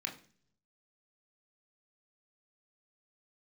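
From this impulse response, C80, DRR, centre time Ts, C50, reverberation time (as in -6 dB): 16.5 dB, 0.5 dB, 16 ms, 12.5 dB, no single decay rate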